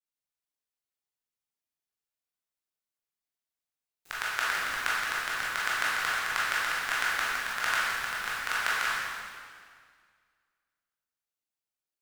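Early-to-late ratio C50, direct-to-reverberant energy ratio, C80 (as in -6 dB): -3.5 dB, -8.5 dB, -0.5 dB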